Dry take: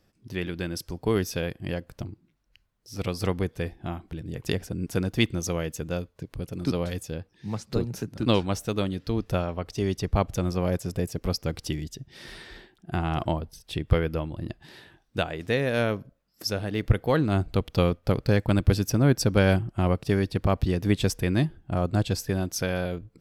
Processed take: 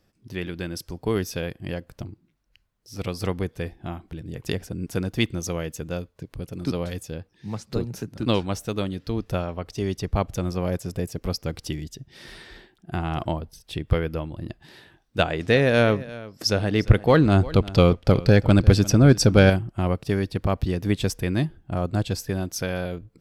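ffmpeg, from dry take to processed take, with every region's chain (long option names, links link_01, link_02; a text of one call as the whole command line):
ffmpeg -i in.wav -filter_complex "[0:a]asettb=1/sr,asplit=3[link_01][link_02][link_03];[link_01]atrim=end=15.194[link_04];[link_02]atrim=start=15.19:end=19.5,asetpts=PTS-STARTPTS,afade=type=in:duration=0.004:curve=qsin,afade=type=out:start_time=4.306:duration=0.004:curve=qsin,lowpass=8800,acontrast=75,aecho=1:1:349:0.119,atrim=end_sample=190071[link_05];[link_03]atrim=start=19.496[link_06];[link_04][link_05]acrossfade=duration=0.004:curve1=hsin:curve2=qsin[link_07];[link_07][link_06]acrossfade=duration=0.004:curve1=qsin:curve2=hsin" out.wav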